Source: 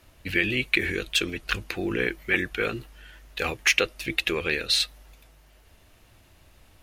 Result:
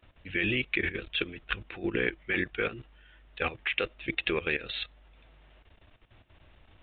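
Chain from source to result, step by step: requantised 10-bit, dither none; level quantiser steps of 14 dB; downsampling 8000 Hz

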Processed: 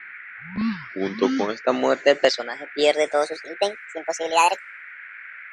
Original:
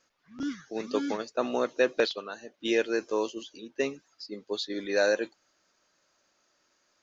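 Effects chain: speed glide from 63% -> 191%; low-pass opened by the level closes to 2100 Hz, open at -21.5 dBFS; band noise 1400–2300 Hz -48 dBFS; gain +8 dB

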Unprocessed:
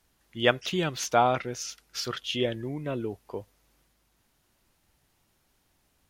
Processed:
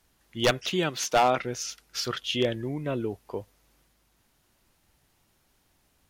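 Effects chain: 0.72–1.39 HPF 170 Hz 12 dB/oct; wavefolder -15.5 dBFS; gain +2 dB

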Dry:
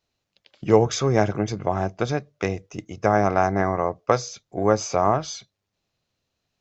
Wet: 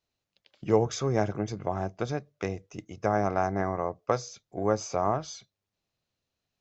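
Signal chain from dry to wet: dynamic EQ 2700 Hz, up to -3 dB, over -38 dBFS, Q 0.73; gain -6.5 dB

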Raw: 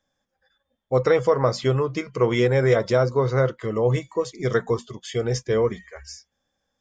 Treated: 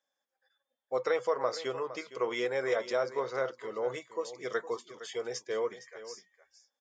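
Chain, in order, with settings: HPF 480 Hz 12 dB/oct; echo 0.462 s -14 dB; gain -8 dB

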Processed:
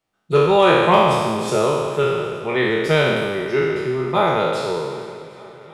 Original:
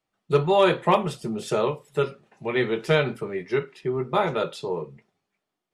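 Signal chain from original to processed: spectral trails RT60 1.73 s; swung echo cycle 0.77 s, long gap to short 1.5:1, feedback 59%, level -22 dB; gain +2 dB

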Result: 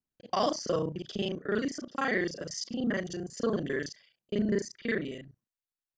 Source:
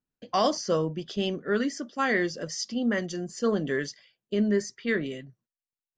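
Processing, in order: local time reversal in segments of 33 ms; gain -3.5 dB

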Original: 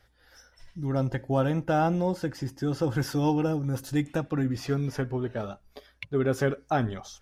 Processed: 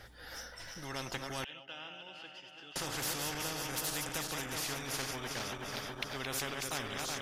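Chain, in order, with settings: regenerating reverse delay 0.186 s, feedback 75%, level -8 dB; 1.44–2.76 band-pass 2900 Hz, Q 15; spectral compressor 4:1; gain -7.5 dB

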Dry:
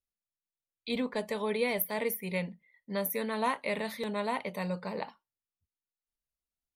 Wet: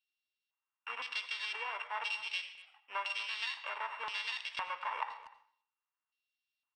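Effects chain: sample sorter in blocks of 16 samples; Bessel high-pass 510 Hz, order 8; band shelf 1900 Hz +16 dB 2.5 oct; compressor 4:1, threshold -26 dBFS, peak gain reduction 12 dB; LFO band-pass square 0.98 Hz 960–4400 Hz; speakerphone echo 0.24 s, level -15 dB; on a send at -11.5 dB: reverb RT60 0.55 s, pre-delay 76 ms; on the sum: downsampling 22050 Hz

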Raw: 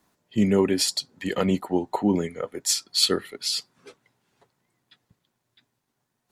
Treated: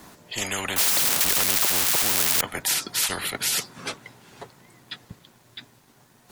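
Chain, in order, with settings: 0.76–2.41 switching spikes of -17.5 dBFS; spectral compressor 10:1; gain +3 dB

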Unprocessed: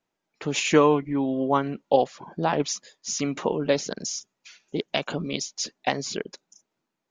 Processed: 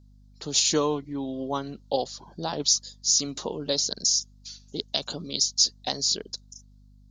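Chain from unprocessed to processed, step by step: resonant high shelf 3200 Hz +11 dB, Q 3; hum 50 Hz, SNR 25 dB; gain -6.5 dB

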